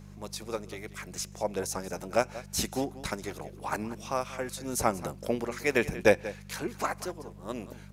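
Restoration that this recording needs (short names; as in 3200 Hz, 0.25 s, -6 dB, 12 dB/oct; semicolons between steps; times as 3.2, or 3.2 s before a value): de-hum 49.6 Hz, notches 4; expander -39 dBFS, range -21 dB; inverse comb 0.185 s -16 dB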